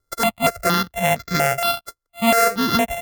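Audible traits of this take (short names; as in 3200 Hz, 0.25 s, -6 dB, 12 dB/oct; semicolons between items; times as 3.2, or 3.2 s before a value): a buzz of ramps at a fixed pitch in blocks of 64 samples; notches that jump at a steady rate 4.3 Hz 710–2900 Hz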